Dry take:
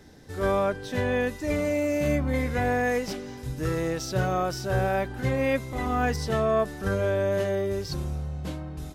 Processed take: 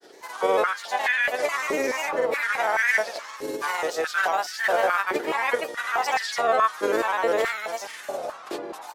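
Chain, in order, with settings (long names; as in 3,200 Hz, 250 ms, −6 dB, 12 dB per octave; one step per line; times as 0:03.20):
ceiling on every frequency bin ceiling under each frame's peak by 16 dB
granular cloud, pitch spread up and down by 3 semitones
high-pass on a step sequencer 4.7 Hz 390–1,800 Hz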